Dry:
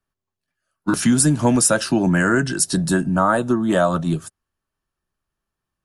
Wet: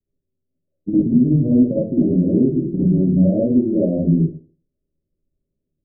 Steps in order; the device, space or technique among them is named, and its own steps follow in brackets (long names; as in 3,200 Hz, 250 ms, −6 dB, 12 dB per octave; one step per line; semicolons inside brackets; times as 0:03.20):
Butterworth low-pass 590 Hz 72 dB per octave
0:02.27–0:02.69: parametric band 220 Hz +3.5 dB 1.6 octaves
television next door (downward compressor, threshold −20 dBFS, peak gain reduction 8 dB; low-pass filter 520 Hz 12 dB per octave; convolution reverb RT60 0.40 s, pre-delay 50 ms, DRR −8 dB)